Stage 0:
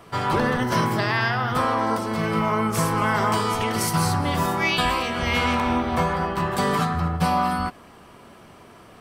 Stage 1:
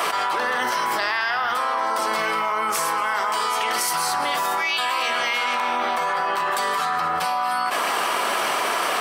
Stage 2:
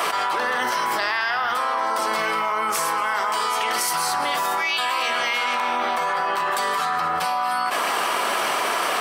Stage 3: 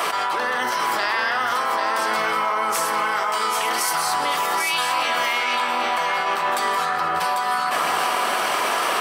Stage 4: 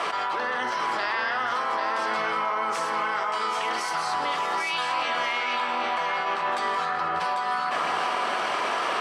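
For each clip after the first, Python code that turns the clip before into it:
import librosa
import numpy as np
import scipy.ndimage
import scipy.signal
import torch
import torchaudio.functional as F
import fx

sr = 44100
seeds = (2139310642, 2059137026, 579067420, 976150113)

y1 = scipy.signal.sosfilt(scipy.signal.butter(2, 740.0, 'highpass', fs=sr, output='sos'), x)
y1 = fx.env_flatten(y1, sr, amount_pct=100)
y1 = y1 * 10.0 ** (-1.5 / 20.0)
y2 = y1
y3 = y2 + 10.0 ** (-5.5 / 20.0) * np.pad(y2, (int(794 * sr / 1000.0), 0))[:len(y2)]
y4 = fx.air_absorb(y3, sr, metres=97.0)
y4 = y4 * 10.0 ** (-4.0 / 20.0)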